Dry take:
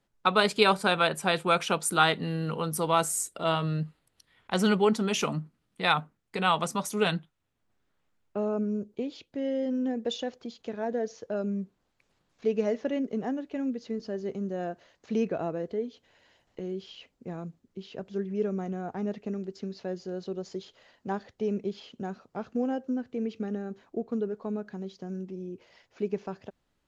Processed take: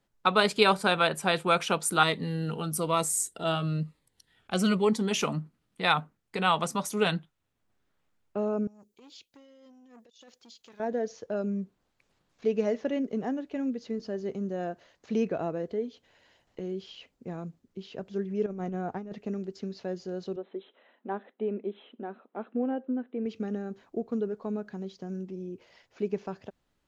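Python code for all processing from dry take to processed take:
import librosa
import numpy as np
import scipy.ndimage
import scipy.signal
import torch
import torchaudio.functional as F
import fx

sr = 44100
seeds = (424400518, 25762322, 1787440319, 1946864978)

y = fx.chain(x, sr, fx.peak_eq(hz=8300.0, db=2.5, octaves=0.43),
    fx.notch_cascade(direction='falling', hz=1.1), at=(2.03, 5.11))
y = fx.chain(y, sr, fx.pre_emphasis(coefficient=0.9),
    fx.over_compress(threshold_db=-51.0, ratio=-0.5),
    fx.transformer_sat(knee_hz=930.0), at=(8.67, 10.8))
y = fx.chain(y, sr, fx.high_shelf(hz=5800.0, db=-7.5),
    fx.over_compress(threshold_db=-34.0, ratio=-0.5), at=(18.46, 19.13))
y = fx.chain(y, sr, fx.brickwall_bandpass(low_hz=200.0, high_hz=4100.0),
    fx.air_absorb(metres=320.0), at=(20.36, 23.26))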